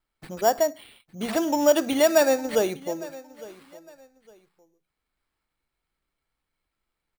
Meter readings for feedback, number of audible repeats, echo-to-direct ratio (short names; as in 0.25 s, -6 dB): 27%, 2, -19.0 dB